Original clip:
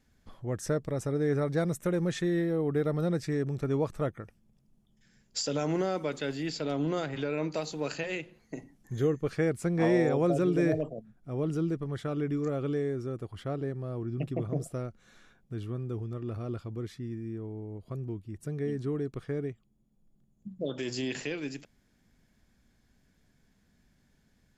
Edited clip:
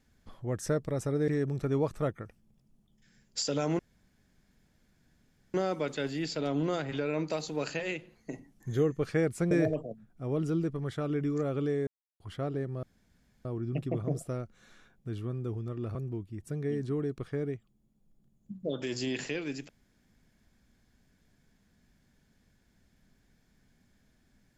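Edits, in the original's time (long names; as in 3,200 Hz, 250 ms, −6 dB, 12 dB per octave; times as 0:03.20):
0:01.28–0:03.27: remove
0:05.78: splice in room tone 1.75 s
0:09.75–0:10.58: remove
0:12.94–0:13.27: silence
0:13.90: splice in room tone 0.62 s
0:16.40–0:17.91: remove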